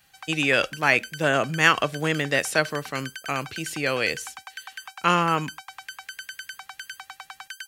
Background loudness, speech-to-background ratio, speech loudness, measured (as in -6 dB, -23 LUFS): -39.0 LUFS, 15.5 dB, -23.5 LUFS